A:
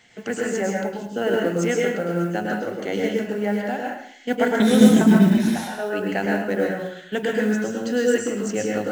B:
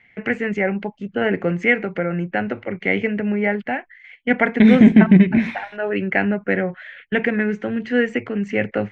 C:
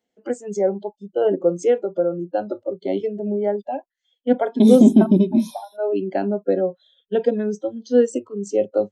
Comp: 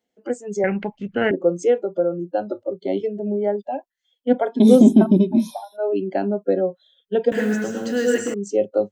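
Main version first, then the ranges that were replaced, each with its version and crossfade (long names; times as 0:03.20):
C
0:00.64–0:01.31: punch in from B
0:07.32–0:08.34: punch in from A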